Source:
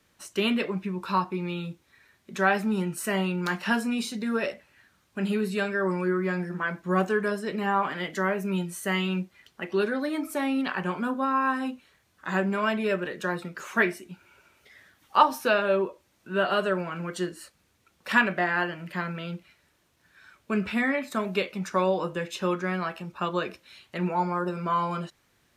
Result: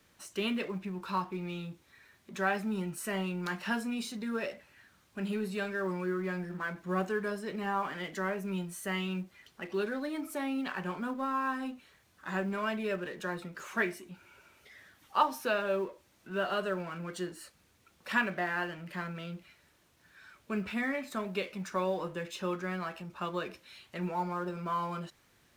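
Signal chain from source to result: G.711 law mismatch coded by mu; gain -8 dB

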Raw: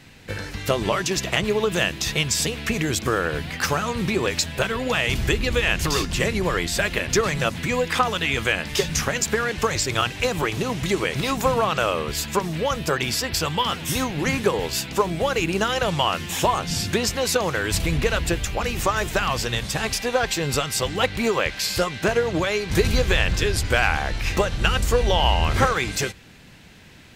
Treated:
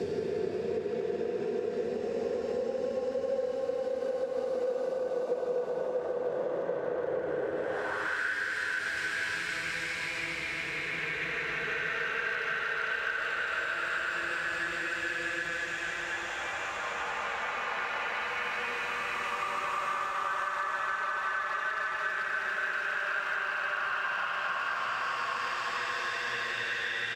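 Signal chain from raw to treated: Paulstretch 10×, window 0.50 s, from 16.83; band-pass sweep 490 Hz -> 1600 Hz, 7.56–8.2; compressor 12:1, threshold -32 dBFS, peak gain reduction 13 dB; speakerphone echo 0.15 s, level -7 dB; gain +3 dB

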